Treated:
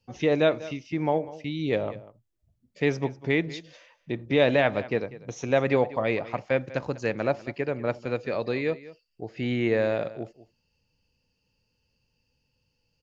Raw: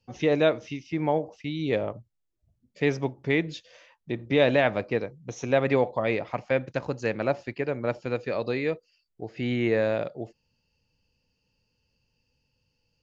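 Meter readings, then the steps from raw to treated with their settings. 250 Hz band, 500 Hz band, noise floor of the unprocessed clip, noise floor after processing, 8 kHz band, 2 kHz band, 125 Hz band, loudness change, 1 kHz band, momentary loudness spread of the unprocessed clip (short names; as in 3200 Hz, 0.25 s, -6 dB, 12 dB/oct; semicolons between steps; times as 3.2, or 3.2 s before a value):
0.0 dB, 0.0 dB, -77 dBFS, -75 dBFS, n/a, 0.0 dB, 0.0 dB, 0.0 dB, 0.0 dB, 14 LU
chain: echo 0.195 s -17.5 dB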